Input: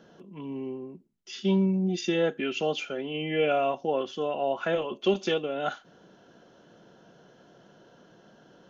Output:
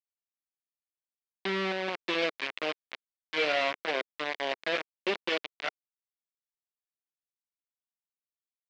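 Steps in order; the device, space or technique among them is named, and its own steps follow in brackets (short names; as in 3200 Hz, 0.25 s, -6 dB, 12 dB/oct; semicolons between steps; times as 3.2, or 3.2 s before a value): hand-held game console (bit-crush 4-bit; speaker cabinet 420–4100 Hz, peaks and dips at 430 Hz -3 dB, 830 Hz -7 dB, 1300 Hz -4 dB, 2200 Hz +4 dB); gain -2 dB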